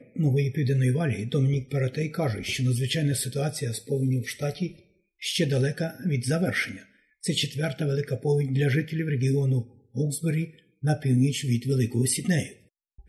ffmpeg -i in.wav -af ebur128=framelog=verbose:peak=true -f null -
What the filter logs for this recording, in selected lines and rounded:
Integrated loudness:
  I:         -26.5 LUFS
  Threshold: -36.8 LUFS
Loudness range:
  LRA:         2.2 LU
  Threshold: -47.0 LUFS
  LRA low:   -28.2 LUFS
  LRA high:  -26.0 LUFS
True peak:
  Peak:      -12.4 dBFS